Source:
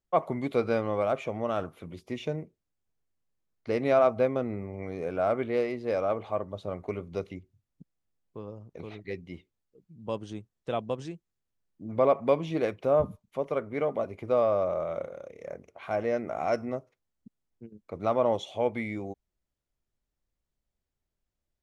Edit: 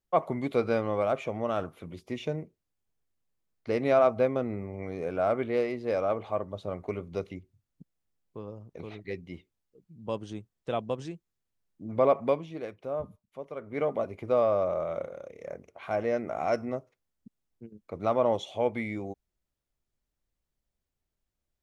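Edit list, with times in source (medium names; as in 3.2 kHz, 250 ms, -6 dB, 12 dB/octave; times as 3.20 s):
12.23–13.81 s: dip -9.5 dB, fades 0.24 s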